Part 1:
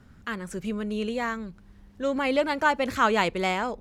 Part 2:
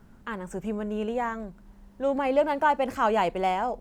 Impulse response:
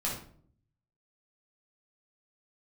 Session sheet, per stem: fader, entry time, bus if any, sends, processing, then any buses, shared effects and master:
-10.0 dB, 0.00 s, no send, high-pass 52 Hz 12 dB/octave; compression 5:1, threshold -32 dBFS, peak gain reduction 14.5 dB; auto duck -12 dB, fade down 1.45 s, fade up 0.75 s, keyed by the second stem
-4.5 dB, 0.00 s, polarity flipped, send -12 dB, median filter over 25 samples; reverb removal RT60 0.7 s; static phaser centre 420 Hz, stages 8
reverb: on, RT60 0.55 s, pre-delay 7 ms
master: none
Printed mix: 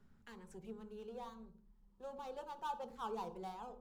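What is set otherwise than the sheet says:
stem 1 -10.0 dB -> -17.0 dB; stem 2 -4.5 dB -> -16.0 dB

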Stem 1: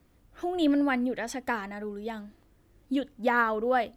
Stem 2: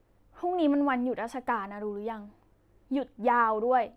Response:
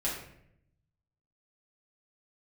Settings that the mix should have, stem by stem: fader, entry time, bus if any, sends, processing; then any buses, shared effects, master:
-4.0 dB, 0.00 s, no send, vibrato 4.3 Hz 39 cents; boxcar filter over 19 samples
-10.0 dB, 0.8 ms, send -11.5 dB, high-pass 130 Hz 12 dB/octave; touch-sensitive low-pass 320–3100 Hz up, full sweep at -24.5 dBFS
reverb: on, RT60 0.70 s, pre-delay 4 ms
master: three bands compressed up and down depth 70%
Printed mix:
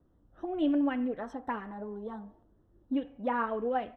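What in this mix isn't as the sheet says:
stem 2 -10.0 dB -> -16.0 dB; master: missing three bands compressed up and down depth 70%

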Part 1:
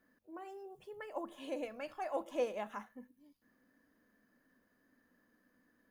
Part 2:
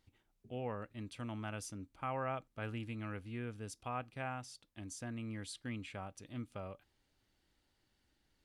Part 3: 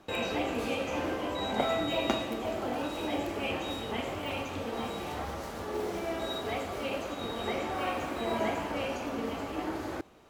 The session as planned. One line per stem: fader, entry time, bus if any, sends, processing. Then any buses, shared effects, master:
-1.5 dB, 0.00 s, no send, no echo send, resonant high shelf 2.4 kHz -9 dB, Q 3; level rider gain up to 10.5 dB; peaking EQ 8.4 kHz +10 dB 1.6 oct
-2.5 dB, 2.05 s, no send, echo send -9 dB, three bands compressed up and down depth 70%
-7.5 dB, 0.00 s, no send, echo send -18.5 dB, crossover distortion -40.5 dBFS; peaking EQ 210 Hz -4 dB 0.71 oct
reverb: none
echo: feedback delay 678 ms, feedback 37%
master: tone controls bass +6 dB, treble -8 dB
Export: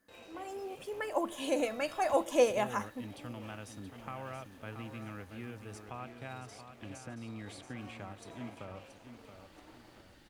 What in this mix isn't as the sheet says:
stem 1: missing resonant high shelf 2.4 kHz -9 dB, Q 3; stem 3 -7.5 dB -> -18.5 dB; master: missing tone controls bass +6 dB, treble -8 dB

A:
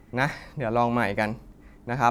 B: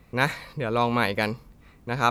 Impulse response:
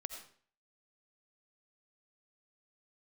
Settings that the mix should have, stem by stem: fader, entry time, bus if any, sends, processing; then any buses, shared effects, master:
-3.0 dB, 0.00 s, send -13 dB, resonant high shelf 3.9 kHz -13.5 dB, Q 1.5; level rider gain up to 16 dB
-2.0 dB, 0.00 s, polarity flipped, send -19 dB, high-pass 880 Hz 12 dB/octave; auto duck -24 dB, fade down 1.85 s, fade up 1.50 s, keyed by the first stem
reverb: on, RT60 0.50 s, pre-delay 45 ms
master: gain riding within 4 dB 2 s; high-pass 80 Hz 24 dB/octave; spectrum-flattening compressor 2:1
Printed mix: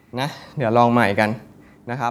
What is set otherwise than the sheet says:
stem A: missing resonant high shelf 3.9 kHz -13.5 dB, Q 1.5; master: missing spectrum-flattening compressor 2:1

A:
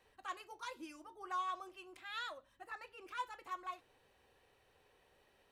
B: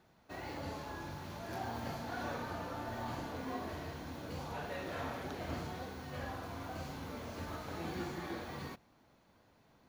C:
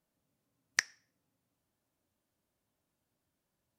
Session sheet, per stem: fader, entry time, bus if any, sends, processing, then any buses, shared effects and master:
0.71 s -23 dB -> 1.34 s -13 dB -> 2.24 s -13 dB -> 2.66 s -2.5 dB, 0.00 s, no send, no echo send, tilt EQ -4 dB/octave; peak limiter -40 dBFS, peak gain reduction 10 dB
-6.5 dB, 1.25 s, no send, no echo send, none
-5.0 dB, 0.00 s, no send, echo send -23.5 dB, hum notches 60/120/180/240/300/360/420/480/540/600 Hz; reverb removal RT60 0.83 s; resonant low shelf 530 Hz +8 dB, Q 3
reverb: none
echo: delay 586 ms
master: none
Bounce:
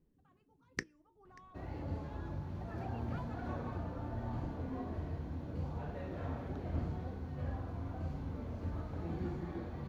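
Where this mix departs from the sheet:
stem A: missing tilt EQ -4 dB/octave; master: extra tilt EQ -4 dB/octave

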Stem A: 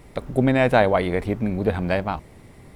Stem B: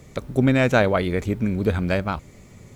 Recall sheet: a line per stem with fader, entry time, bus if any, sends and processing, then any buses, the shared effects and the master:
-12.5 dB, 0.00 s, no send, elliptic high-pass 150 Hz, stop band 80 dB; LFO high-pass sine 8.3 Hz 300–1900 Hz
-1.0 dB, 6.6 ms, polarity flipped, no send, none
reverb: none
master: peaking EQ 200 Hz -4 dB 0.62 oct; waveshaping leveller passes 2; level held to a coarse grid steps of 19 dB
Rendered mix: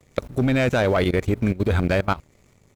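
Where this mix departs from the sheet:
stem A -12.5 dB -> -24.0 dB; stem B: polarity flipped

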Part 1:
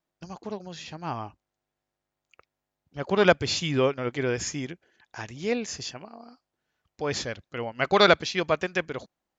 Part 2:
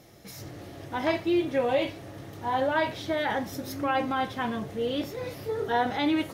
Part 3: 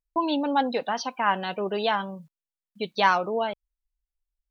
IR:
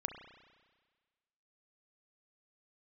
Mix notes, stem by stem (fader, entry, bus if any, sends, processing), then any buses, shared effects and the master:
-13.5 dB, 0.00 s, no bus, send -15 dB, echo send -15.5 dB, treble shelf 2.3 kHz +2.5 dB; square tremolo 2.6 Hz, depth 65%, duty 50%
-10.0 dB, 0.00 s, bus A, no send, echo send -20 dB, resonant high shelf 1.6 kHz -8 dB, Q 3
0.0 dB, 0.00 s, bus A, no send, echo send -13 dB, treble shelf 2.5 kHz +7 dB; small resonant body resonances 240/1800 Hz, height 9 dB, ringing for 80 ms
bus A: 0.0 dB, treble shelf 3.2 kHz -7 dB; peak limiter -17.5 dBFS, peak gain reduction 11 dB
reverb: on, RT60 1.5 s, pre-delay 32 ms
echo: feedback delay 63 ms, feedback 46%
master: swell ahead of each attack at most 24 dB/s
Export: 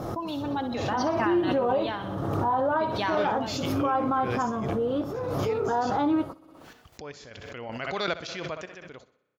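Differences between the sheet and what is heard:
stem 2 -10.0 dB -> +1.0 dB; stem 3 0.0 dB -> -9.5 dB

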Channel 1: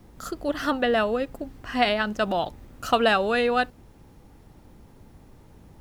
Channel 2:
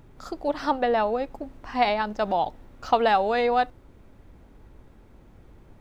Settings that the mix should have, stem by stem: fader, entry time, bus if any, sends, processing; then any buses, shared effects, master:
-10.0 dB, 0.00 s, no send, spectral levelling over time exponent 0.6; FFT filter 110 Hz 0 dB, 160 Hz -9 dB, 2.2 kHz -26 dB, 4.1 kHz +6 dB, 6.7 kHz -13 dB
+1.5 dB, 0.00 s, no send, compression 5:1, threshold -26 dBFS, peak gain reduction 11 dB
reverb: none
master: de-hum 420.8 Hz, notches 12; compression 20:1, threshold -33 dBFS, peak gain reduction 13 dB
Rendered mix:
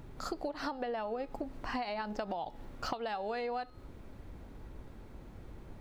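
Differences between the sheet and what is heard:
stem 1: missing spectral levelling over time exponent 0.6; stem 2: polarity flipped

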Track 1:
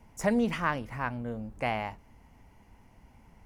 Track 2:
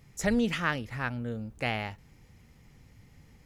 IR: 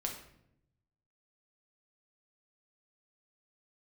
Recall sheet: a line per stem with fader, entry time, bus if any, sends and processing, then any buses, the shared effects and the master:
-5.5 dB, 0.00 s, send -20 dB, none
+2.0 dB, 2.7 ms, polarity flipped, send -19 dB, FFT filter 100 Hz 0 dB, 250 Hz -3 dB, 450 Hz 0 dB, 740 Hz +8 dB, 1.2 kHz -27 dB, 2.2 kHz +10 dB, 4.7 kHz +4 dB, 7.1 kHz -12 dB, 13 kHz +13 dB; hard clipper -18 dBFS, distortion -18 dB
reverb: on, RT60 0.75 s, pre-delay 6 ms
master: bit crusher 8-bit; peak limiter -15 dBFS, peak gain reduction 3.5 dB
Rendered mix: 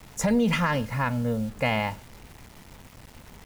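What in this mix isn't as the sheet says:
stem 1 -5.5 dB -> +5.0 dB; stem 2: missing FFT filter 100 Hz 0 dB, 250 Hz -3 dB, 450 Hz 0 dB, 740 Hz +8 dB, 1.2 kHz -27 dB, 2.2 kHz +10 dB, 4.7 kHz +4 dB, 7.1 kHz -12 dB, 13 kHz +13 dB

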